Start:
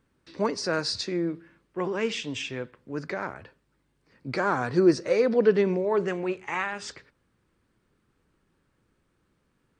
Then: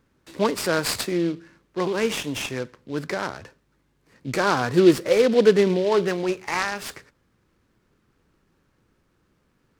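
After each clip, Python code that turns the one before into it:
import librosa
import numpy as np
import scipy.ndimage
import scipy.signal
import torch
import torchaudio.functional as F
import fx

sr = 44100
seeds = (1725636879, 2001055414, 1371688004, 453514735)

y = fx.noise_mod_delay(x, sr, seeds[0], noise_hz=3000.0, depth_ms=0.035)
y = y * 10.0 ** (4.5 / 20.0)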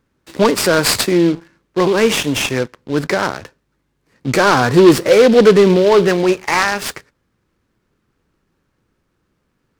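y = fx.leveller(x, sr, passes=2)
y = y * 10.0 ** (3.5 / 20.0)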